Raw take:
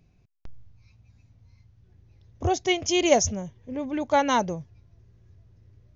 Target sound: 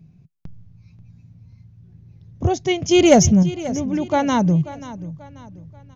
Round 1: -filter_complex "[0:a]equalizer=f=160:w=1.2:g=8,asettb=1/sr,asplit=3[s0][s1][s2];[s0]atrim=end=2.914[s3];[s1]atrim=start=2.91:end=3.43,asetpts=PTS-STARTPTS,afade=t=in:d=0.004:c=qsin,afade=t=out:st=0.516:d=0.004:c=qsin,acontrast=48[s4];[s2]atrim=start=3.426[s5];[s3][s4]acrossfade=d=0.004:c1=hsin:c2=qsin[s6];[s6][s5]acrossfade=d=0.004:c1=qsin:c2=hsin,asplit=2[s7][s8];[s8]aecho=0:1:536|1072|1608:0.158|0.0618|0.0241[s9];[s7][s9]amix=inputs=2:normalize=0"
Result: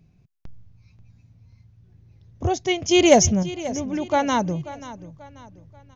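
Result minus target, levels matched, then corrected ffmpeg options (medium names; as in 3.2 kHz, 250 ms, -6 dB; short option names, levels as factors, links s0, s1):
125 Hz band -5.0 dB
-filter_complex "[0:a]equalizer=f=160:w=1.2:g=19.5,asettb=1/sr,asplit=3[s0][s1][s2];[s0]atrim=end=2.914[s3];[s1]atrim=start=2.91:end=3.43,asetpts=PTS-STARTPTS,afade=t=in:d=0.004:c=qsin,afade=t=out:st=0.516:d=0.004:c=qsin,acontrast=48[s4];[s2]atrim=start=3.426[s5];[s3][s4]acrossfade=d=0.004:c1=hsin:c2=qsin[s6];[s6][s5]acrossfade=d=0.004:c1=qsin:c2=hsin,asplit=2[s7][s8];[s8]aecho=0:1:536|1072|1608:0.158|0.0618|0.0241[s9];[s7][s9]amix=inputs=2:normalize=0"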